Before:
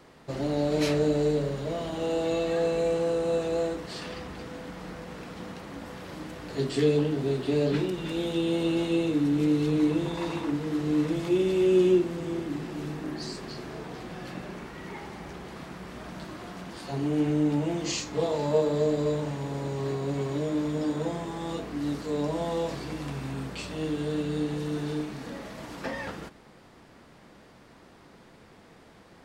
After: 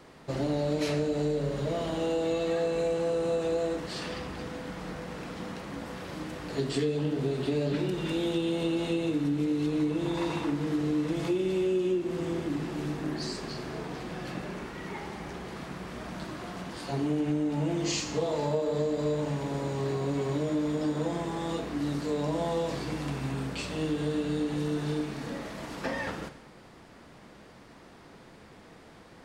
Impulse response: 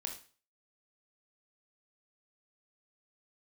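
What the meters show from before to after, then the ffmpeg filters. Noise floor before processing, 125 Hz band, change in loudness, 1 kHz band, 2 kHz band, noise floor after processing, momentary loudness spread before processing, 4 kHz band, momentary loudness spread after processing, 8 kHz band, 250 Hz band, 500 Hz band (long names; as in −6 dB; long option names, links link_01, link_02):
−54 dBFS, −1.0 dB, −3.0 dB, 0.0 dB, 0.0 dB, −52 dBFS, 16 LU, −0.5 dB, 10 LU, 0.0 dB, −2.0 dB, −2.5 dB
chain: -filter_complex "[0:a]asplit=2[link_01][link_02];[1:a]atrim=start_sample=2205,asetrate=22491,aresample=44100[link_03];[link_02][link_03]afir=irnorm=-1:irlink=0,volume=-7.5dB[link_04];[link_01][link_04]amix=inputs=2:normalize=0,acompressor=threshold=-23dB:ratio=6,volume=-2dB"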